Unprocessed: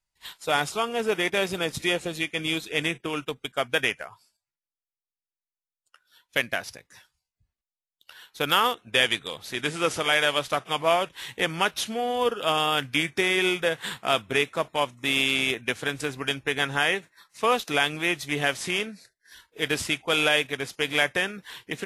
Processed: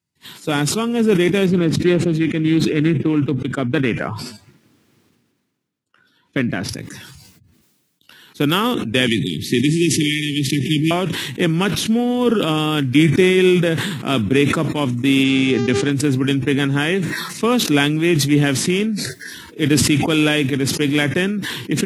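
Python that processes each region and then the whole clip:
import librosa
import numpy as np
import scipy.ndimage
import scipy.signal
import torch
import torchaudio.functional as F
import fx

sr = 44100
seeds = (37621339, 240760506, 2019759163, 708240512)

y = fx.chain(x, sr, fx.lowpass(hz=2000.0, slope=6),
    fx.doppler_dist(depth_ms=0.23), at=(1.46, 6.69))
y = fx.chain(y, sr, fx.brickwall_bandstop(low_hz=420.0, high_hz=1700.0),
    fx.band_squash(depth_pct=100), at=(9.07, 10.91))
y = fx.lowpass(y, sr, hz=8500.0, slope=24, at=(15.23, 15.9), fade=0.02)
y = fx.dmg_buzz(y, sr, base_hz=400.0, harmonics=17, level_db=-41.0, tilt_db=-5, odd_only=False, at=(15.23, 15.9), fade=0.02)
y = scipy.signal.sosfilt(scipy.signal.butter(4, 100.0, 'highpass', fs=sr, output='sos'), y)
y = fx.low_shelf_res(y, sr, hz=430.0, db=13.0, q=1.5)
y = fx.sustainer(y, sr, db_per_s=34.0)
y = y * librosa.db_to_amplitude(2.0)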